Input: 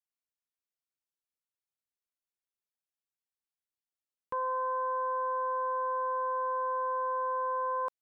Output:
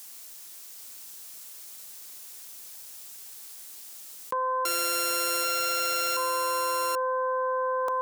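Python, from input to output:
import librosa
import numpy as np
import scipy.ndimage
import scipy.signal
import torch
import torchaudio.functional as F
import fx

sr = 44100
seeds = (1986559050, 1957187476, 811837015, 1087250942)

p1 = fx.sample_sort(x, sr, block=32, at=(4.65, 6.17))
p2 = scipy.signal.sosfilt(scipy.signal.butter(2, 110.0, 'highpass', fs=sr, output='sos'), p1)
p3 = fx.bass_treble(p2, sr, bass_db=-4, treble_db=11)
p4 = p3 + fx.echo_single(p3, sr, ms=783, db=-7.5, dry=0)
y = fx.env_flatten(p4, sr, amount_pct=100)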